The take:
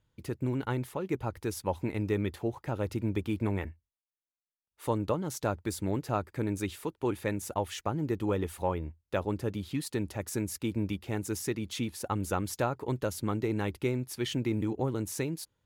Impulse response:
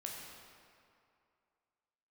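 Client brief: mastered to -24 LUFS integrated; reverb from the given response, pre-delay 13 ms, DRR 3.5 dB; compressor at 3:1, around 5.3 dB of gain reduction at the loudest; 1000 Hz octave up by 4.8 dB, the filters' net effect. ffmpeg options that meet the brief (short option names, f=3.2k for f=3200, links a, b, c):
-filter_complex "[0:a]equalizer=f=1k:t=o:g=6,acompressor=threshold=-29dB:ratio=3,asplit=2[a][b];[1:a]atrim=start_sample=2205,adelay=13[c];[b][c]afir=irnorm=-1:irlink=0,volume=-2.5dB[d];[a][d]amix=inputs=2:normalize=0,volume=10dB"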